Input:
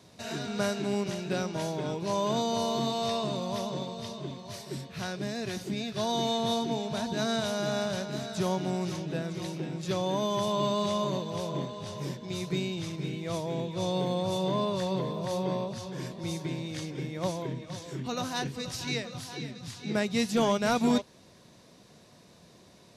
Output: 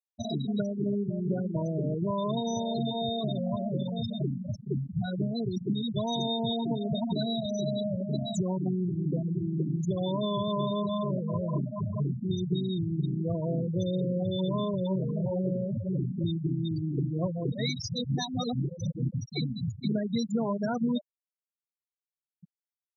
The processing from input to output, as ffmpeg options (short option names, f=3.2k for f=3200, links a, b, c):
-filter_complex "[0:a]asplit=3[a][b][c];[a]atrim=end=17.522[d];[b]atrim=start=17.518:end=19.092,asetpts=PTS-STARTPTS,areverse[e];[c]atrim=start=19.088[f];[d][e]acrossfade=d=0.004:c1=hsin:c2=hsin[g];[g][f]acrossfade=d=0.004:c1=hsin:c2=hsin,bass=f=250:g=6,treble=f=4k:g=11,acompressor=threshold=-34dB:ratio=6,afftfilt=real='re*gte(hypot(re,im),0.0398)':imag='im*gte(hypot(re,im),0.0398)':win_size=1024:overlap=0.75,volume=8.5dB"